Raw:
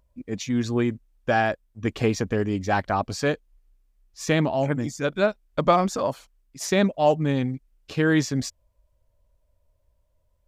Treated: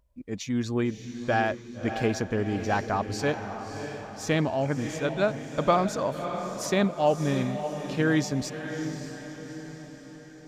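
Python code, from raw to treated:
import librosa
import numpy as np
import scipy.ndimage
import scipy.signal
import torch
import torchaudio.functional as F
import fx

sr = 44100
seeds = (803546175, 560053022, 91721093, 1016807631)

y = fx.echo_diffused(x, sr, ms=617, feedback_pct=52, wet_db=-8.5)
y = F.gain(torch.from_numpy(y), -3.5).numpy()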